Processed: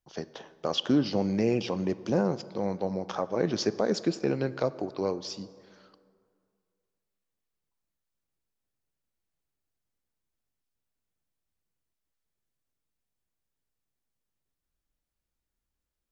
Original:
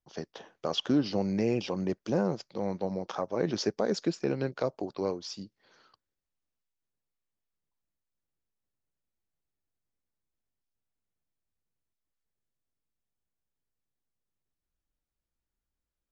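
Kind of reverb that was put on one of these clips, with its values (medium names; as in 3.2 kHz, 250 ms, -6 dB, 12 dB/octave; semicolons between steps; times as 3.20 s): plate-style reverb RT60 2.2 s, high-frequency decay 0.5×, DRR 15 dB; trim +2 dB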